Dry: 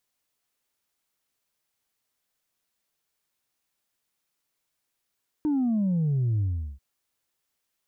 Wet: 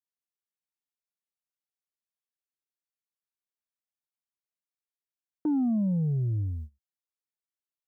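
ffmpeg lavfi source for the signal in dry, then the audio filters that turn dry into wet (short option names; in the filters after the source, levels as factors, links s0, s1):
-f lavfi -i "aevalsrc='0.0794*clip((1.34-t)/0.39,0,1)*tanh(1.12*sin(2*PI*310*1.34/log(65/310)*(exp(log(65/310)*t/1.34)-1)))/tanh(1.12)':d=1.34:s=44100"
-af "highpass=f=110:p=1,agate=range=0.0794:threshold=0.0141:ratio=16:detection=peak"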